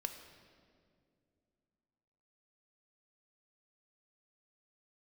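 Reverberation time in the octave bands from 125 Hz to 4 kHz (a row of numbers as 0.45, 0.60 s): 3.1, 3.2, 2.7, 1.9, 1.7, 1.5 s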